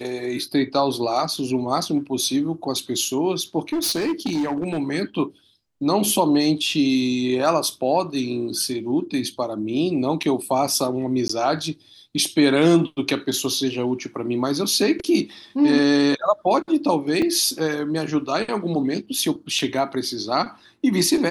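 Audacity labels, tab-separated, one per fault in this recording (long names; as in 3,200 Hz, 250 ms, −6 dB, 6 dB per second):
3.720000	4.790000	clipping −19 dBFS
10.230000	10.230000	drop-out 4 ms
11.280000	11.290000	drop-out 14 ms
17.220000	17.220000	drop-out 3.7 ms
19.590000	19.590000	drop-out 4.1 ms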